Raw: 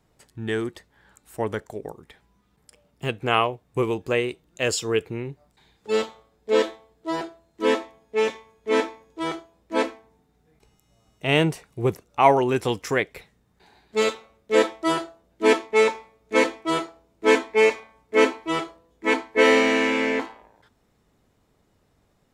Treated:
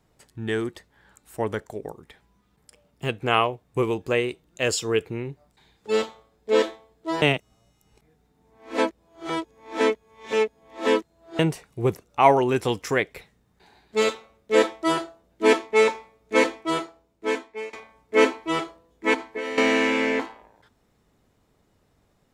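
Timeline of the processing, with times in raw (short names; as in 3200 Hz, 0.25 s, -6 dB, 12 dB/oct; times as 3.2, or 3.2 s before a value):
7.22–11.39 reverse
16.55–17.73 fade out, to -24 dB
19.14–19.58 compressor 8:1, threshold -27 dBFS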